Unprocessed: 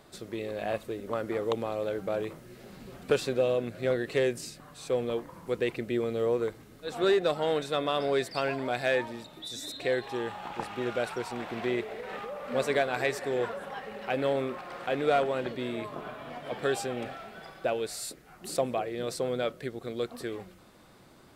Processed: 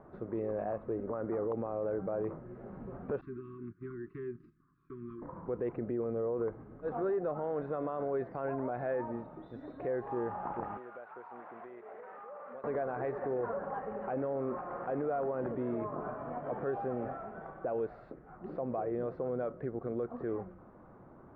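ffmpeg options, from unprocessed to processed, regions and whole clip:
-filter_complex "[0:a]asettb=1/sr,asplit=3[s0][s1][s2];[s0]atrim=end=3.214[s3];[s1]atrim=start=3.21:end=5.22,asetpts=PTS-STARTPTS,afade=t=in:d=0.004:c=qsin,afade=t=out:st=2.006:d=0.004:c=qsin,agate=range=0.1:threshold=0.01:ratio=16:release=100:detection=peak,acompressor=threshold=0.00501:ratio=2:attack=3.2:release=140:knee=1:detection=peak,asuperstop=centerf=650:order=20:qfactor=1[s4];[s2]atrim=start=5.216[s5];[s3][s4]acrossfade=d=0.004:c1=hsin:c2=qsin[s6];[s6][s5]acrossfade=d=0.004:c1=qsin:c2=hsin,asettb=1/sr,asplit=3[s7][s8][s9];[s7]atrim=end=10.774[s10];[s8]atrim=start=10.77:end=12.64,asetpts=PTS-STARTPTS,afade=t=in:d=0.004:c=qsin,afade=t=out:st=1.866:d=0.004:c=qsin,highpass=f=1500:p=1,acompressor=threshold=0.00708:ratio=8:attack=3.2:release=140:knee=1:detection=peak[s11];[s9]atrim=start=12.636[s12];[s10][s11]acrossfade=d=0.004:c1=hsin:c2=qsin[s13];[s13][s12]acrossfade=d=0.004:c1=qsin:c2=hsin,acompressor=threshold=0.0398:ratio=4,lowpass=f=1300:w=0.5412,lowpass=f=1300:w=1.3066,alimiter=level_in=1.68:limit=0.0631:level=0:latency=1:release=38,volume=0.596,volume=1.26"

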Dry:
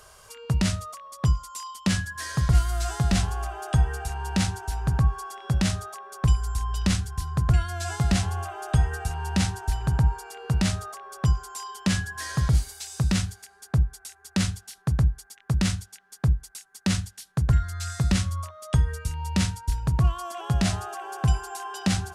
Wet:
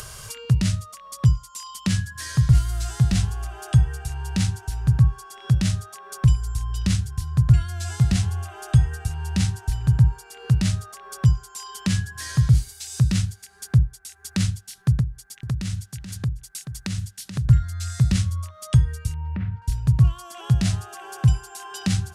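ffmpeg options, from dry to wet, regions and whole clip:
-filter_complex "[0:a]asettb=1/sr,asplit=3[s0][s1][s2];[s0]atrim=end=15.004[s3];[s1]atrim=start=15:end=17.45,asetpts=PTS-STARTPTS,afade=t=in:d=0.004:c=qsin,afade=t=out:st=2.446:d=0.004:c=qsin,acompressor=threshold=0.0501:ratio=6:attack=3.2:release=140:knee=1:detection=peak,aecho=1:1:431:0.168,atrim=end_sample=108045[s4];[s2]atrim=start=17.446[s5];[s3][s4]acrossfade=d=0.004:c1=hsin:c2=qsin[s6];[s6][s5]acrossfade=d=0.004:c1=qsin:c2=hsin,asettb=1/sr,asplit=3[s7][s8][s9];[s7]atrim=end=19.144[s10];[s8]atrim=start=19.14:end=19.62,asetpts=PTS-STARTPTS,afade=t=in:d=0.004:c=qsin,afade=t=out:st=0.476:d=0.004:c=qsin,lowpass=f=2000:w=0.5412,lowpass=f=2000:w=1.3066,acompressor=threshold=0.0447:ratio=3:attack=3.2:release=140:knee=1:detection=peak[s11];[s9]atrim=start=19.616[s12];[s10][s11]acrossfade=d=0.004:c1=hsin:c2=qsin[s13];[s13][s12]acrossfade=d=0.004:c1=qsin:c2=hsin,equalizer=f=120:t=o:w=0.67:g=10,acompressor=mode=upward:threshold=0.0631:ratio=2.5,equalizer=f=730:t=o:w=2.2:g=-9"

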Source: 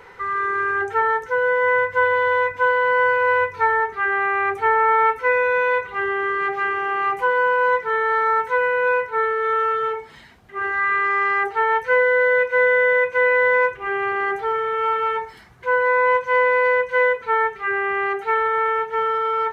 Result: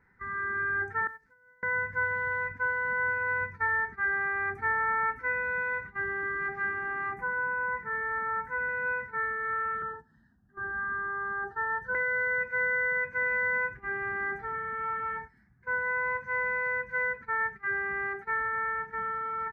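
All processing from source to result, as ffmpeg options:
-filter_complex "[0:a]asettb=1/sr,asplit=3[s0][s1][s2];[s0]atrim=end=1.074[s3];[s1]atrim=start=1.07:end=1.63,asetpts=PTS-STARTPTS,afade=t=in:d=0.004:c=qsin,afade=t=out:st=0.556:d=0.004:c=qsin,acrusher=bits=5:mix=0:aa=0.5,acompressor=threshold=0.0562:ratio=16:attack=3.2:release=140:knee=1:detection=peak,agate=range=0.355:threshold=0.0355:ratio=16:release=100:detection=peak[s4];[s2]atrim=start=1.626[s5];[s3][s4]acrossfade=d=0.004:c1=hsin:c2=qsin[s6];[s6][s5]acrossfade=d=0.004:c1=qsin:c2=hsin,asettb=1/sr,asplit=3[s7][s8][s9];[s7]atrim=end=7.144[s10];[s8]atrim=start=7.14:end=8.69,asetpts=PTS-STARTPTS,afade=t=in:d=0.004:c=qsin,afade=t=out:st=1.546:d=0.004:c=qsin,equalizer=f=4000:t=o:w=1:g=-10.5,asplit=2[s11][s12];[s12]adelay=47,volume=0.251[s13];[s11][s13]amix=inputs=2:normalize=0,atrim=end_sample=68355[s14];[s9]atrim=start=8.686[s15];[s10][s14]acrossfade=d=0.004:c1=hsin:c2=qsin[s16];[s16][s15]acrossfade=d=0.004:c1=qsin:c2=hsin,asettb=1/sr,asplit=3[s17][s18][s19];[s17]atrim=end=9.824[s20];[s18]atrim=start=9.82:end=11.95,asetpts=PTS-STARTPTS,afade=t=in:d=0.004:c=qsin,afade=t=out:st=2.126:d=0.004:c=qsin,acrossover=split=2900[s21][s22];[s22]acompressor=threshold=0.00282:ratio=4:attack=1:release=60[s23];[s21][s23]amix=inputs=2:normalize=0,asuperstop=centerf=2300:order=12:qfactor=2.2,equalizer=f=1600:w=5.7:g=-2.5[s24];[s19]atrim=start=11.946[s25];[s20][s24]acrossfade=d=0.004:c1=hsin:c2=qsin[s26];[s26][s25]acrossfade=d=0.004:c1=qsin:c2=hsin,agate=range=0.251:threshold=0.0355:ratio=16:detection=peak,firequalizer=gain_entry='entry(140,0);entry(220,4);entry(450,-20);entry(780,-14);entry(1100,-16);entry(1700,-3);entry(3000,-30);entry(4800,-19);entry(7000,-21)':delay=0.05:min_phase=1"

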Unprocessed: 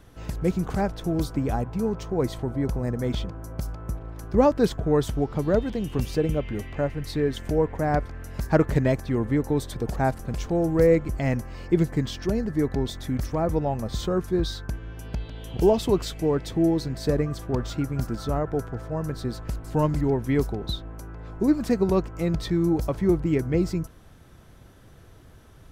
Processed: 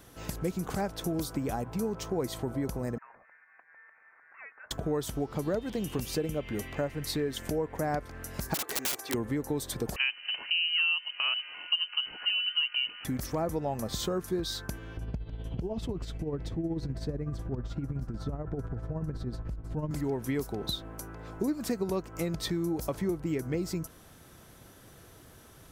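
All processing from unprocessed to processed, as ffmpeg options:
-filter_complex "[0:a]asettb=1/sr,asplit=3[s0][s1][s2];[s0]atrim=end=2.984[s3];[s1]atrim=start=2.98:end=4.71,asetpts=PTS-STARTPTS,afade=t=in:d=0.004:c=qsin,afade=t=out:st=1.726:d=0.004:c=qsin,highpass=f=1500:w=0.5412,highpass=f=1500:w=1.3066,acompressor=threshold=0.00316:ratio=2:attack=3.2:release=140:knee=1:detection=peak,lowpass=f=2600:t=q:w=0.5098,lowpass=f=2600:t=q:w=0.6013,lowpass=f=2600:t=q:w=0.9,lowpass=f=2600:t=q:w=2.563,afreqshift=-3100[s4];[s2]atrim=start=4.706[s5];[s3][s4]acrossfade=d=0.004:c1=hsin:c2=qsin[s6];[s6][s5]acrossfade=d=0.004:c1=qsin:c2=hsin,asettb=1/sr,asplit=3[s7][s8][s9];[s7]atrim=end=8.544[s10];[s8]atrim=start=8.54:end=9.14,asetpts=PTS-STARTPTS,afade=t=in:d=0.004:c=qsin,afade=t=out:st=0.596:d=0.004:c=qsin,highpass=430,aecho=1:1:2.6:0.66,atrim=end_sample=26460,aeval=exprs='(mod(18.8*val(0)+1,2)-1)/18.8':c=same[s11];[s9]atrim=start=9.136[s12];[s10][s11]acrossfade=d=0.004:c1=hsin:c2=qsin[s13];[s13][s12]acrossfade=d=0.004:c1=qsin:c2=hsin,asettb=1/sr,asplit=3[s14][s15][s16];[s14]atrim=end=9.964[s17];[s15]atrim=start=9.96:end=13.05,asetpts=PTS-STARTPTS,afade=t=in:d=0.004:c=qsin,afade=t=out:st=3.086:d=0.004:c=qsin,highpass=f=190:w=0.5412,highpass=f=190:w=1.3066,lowpass=f=2700:t=q:w=0.5098,lowpass=f=2700:t=q:w=0.6013,lowpass=f=2700:t=q:w=0.9,lowpass=f=2700:t=q:w=2.563,afreqshift=-3200[s18];[s16]atrim=start=13.046[s19];[s17][s18]acrossfade=d=0.004:c1=hsin:c2=qsin[s20];[s20][s19]acrossfade=d=0.004:c1=qsin:c2=hsin,asettb=1/sr,asplit=3[s21][s22][s23];[s21]atrim=end=14.974[s24];[s22]atrim=start=14.97:end=19.91,asetpts=PTS-STARTPTS,afade=t=in:d=0.004:c=qsin,afade=t=out:st=4.936:d=0.004:c=qsin,acompressor=threshold=0.0398:ratio=3:attack=3.2:release=140:knee=1:detection=peak,tremolo=f=16:d=0.53,aemphasis=mode=reproduction:type=riaa[s25];[s23]atrim=start=19.906[s26];[s24][s25]acrossfade=d=0.004:c1=hsin:c2=qsin[s27];[s27][s26]acrossfade=d=0.004:c1=qsin:c2=hsin,highshelf=f=6100:g=10.5,acompressor=threshold=0.0501:ratio=6,lowshelf=f=97:g=-11.5"

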